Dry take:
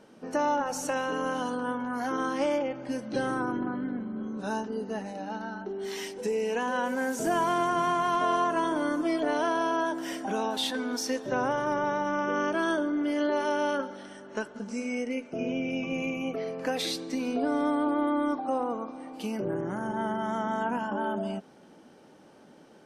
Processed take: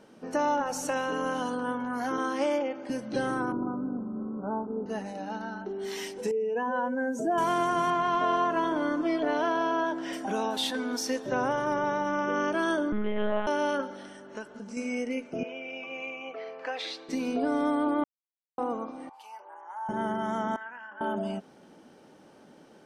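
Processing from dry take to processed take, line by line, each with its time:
0:02.18–0:02.90: high-pass filter 220 Hz 24 dB per octave
0:03.52–0:04.86: Butterworth low-pass 1,400 Hz 96 dB per octave
0:06.31–0:07.38: expanding power law on the bin magnitudes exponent 1.7
0:07.90–0:10.13: low-pass filter 4,500 Hz
0:12.92–0:13.47: one-pitch LPC vocoder at 8 kHz 210 Hz
0:14.09–0:14.77: downward compressor 1.5 to 1, threshold −44 dBFS
0:15.43–0:17.09: band-pass filter 660–3,400 Hz
0:18.04–0:18.58: silence
0:19.09–0:19.89: four-pole ladder high-pass 850 Hz, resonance 80%
0:20.56–0:21.01: resonant band-pass 1,800 Hz, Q 3.5

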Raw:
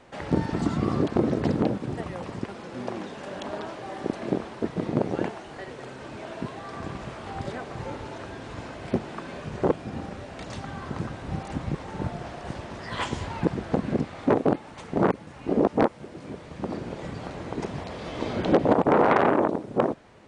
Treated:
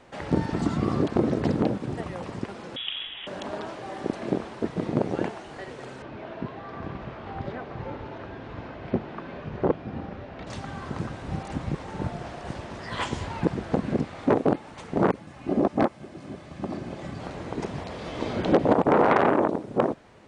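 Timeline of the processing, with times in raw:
0:02.76–0:03.27: voice inversion scrambler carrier 3,600 Hz
0:06.02–0:10.47: high-frequency loss of the air 240 metres
0:15.20–0:17.20: notch comb filter 470 Hz

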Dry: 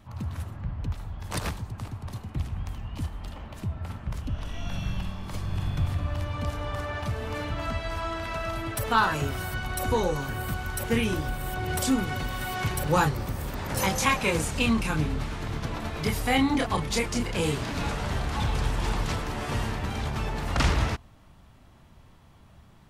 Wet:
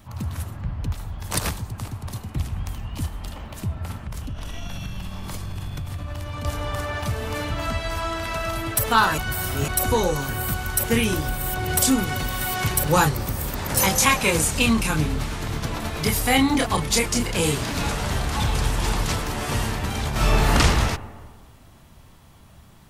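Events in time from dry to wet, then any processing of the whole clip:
0:04.05–0:06.45: downward compressor, threshold −31 dBFS
0:09.18–0:09.68: reverse
0:20.11–0:20.54: thrown reverb, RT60 1.6 s, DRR −7 dB
whole clip: high-shelf EQ 5,900 Hz +11 dB; level +4 dB

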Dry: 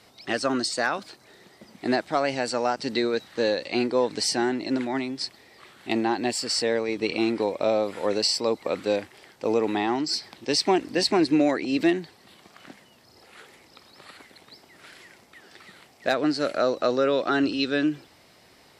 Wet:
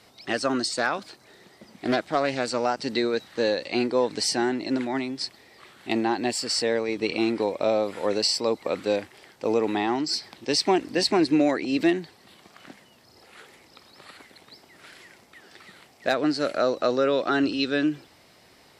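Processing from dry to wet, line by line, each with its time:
0:00.65–0:02.66: highs frequency-modulated by the lows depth 0.27 ms

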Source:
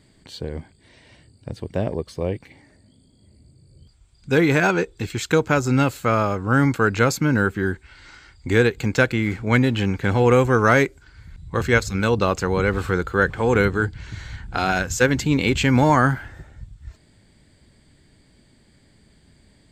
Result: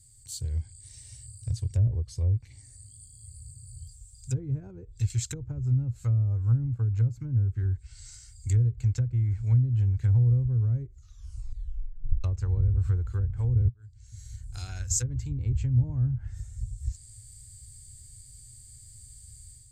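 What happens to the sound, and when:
0:10.85: tape stop 1.39 s
0:13.69–0:16.34: fade in
whole clip: automatic gain control gain up to 7.5 dB; treble cut that deepens with the level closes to 350 Hz, closed at −11.5 dBFS; drawn EQ curve 120 Hz 0 dB, 170 Hz −25 dB, 720 Hz −28 dB, 1,300 Hz −26 dB, 3,300 Hz −16 dB, 7,700 Hz +12 dB

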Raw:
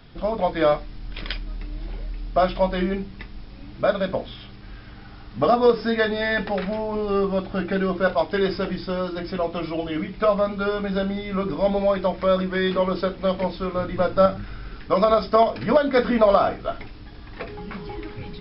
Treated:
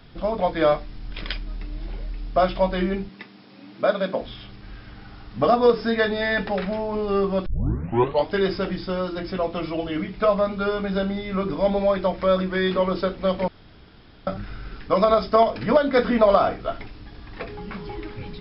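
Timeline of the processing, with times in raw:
0:03.09–0:04.21: high-pass filter 170 Hz 24 dB per octave
0:07.46: tape start 0.82 s
0:13.48–0:14.27: fill with room tone

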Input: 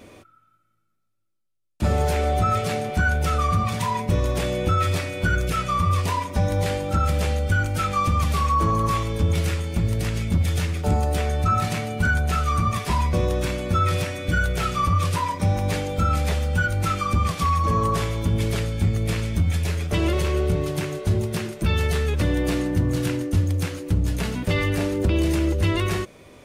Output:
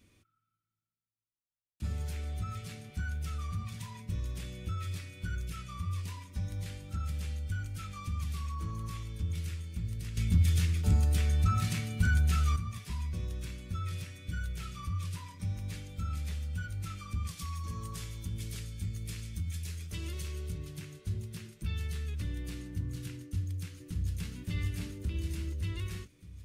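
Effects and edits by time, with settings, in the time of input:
0:10.17–0:12.56: clip gain +9.5 dB
0:17.27–0:20.58: bass and treble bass −2 dB, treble +6 dB
0:23.22–0:24.33: delay throw 580 ms, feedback 60%, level −1.5 dB
whole clip: guitar amp tone stack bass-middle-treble 6-0-2

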